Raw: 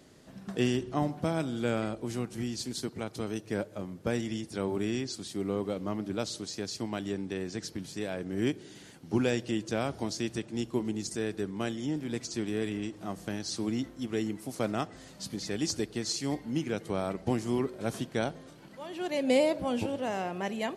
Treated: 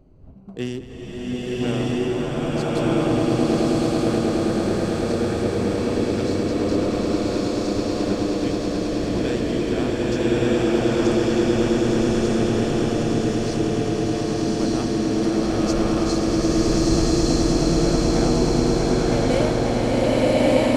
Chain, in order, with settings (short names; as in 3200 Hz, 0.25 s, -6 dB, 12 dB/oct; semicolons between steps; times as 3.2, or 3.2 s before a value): Wiener smoothing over 25 samples; wind noise 100 Hz -45 dBFS; on a send: swelling echo 0.107 s, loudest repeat 8, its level -10 dB; on the sum: spectral freeze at 0.9, 0.71 s; bloom reverb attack 1.23 s, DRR -8.5 dB